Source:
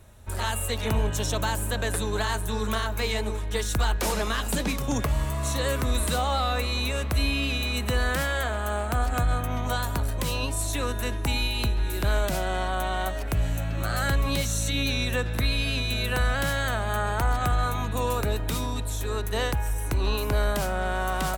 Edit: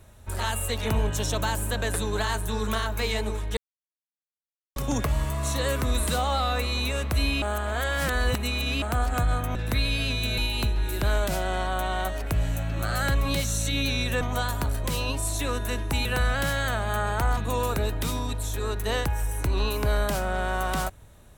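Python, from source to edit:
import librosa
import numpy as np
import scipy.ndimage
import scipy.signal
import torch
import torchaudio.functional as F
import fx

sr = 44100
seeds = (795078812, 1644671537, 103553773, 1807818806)

y = fx.edit(x, sr, fx.silence(start_s=3.57, length_s=1.19),
    fx.reverse_span(start_s=7.42, length_s=1.4),
    fx.swap(start_s=9.55, length_s=1.84, other_s=15.22, other_length_s=0.83),
    fx.cut(start_s=17.37, length_s=0.47), tone=tone)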